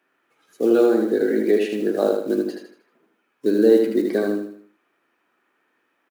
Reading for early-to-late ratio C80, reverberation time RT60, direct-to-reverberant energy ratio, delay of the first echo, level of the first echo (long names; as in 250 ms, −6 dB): no reverb audible, no reverb audible, no reverb audible, 78 ms, −4.5 dB